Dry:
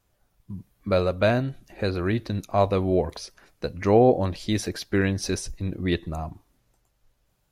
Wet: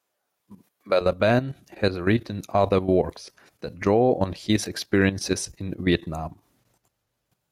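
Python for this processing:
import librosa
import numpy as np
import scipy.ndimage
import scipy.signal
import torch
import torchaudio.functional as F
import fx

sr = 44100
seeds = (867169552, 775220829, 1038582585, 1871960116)

y = fx.highpass(x, sr, hz=fx.steps((0.0, 390.0), (1.01, 100.0)), slope=12)
y = fx.level_steps(y, sr, step_db=12)
y = y * 10.0 ** (6.0 / 20.0)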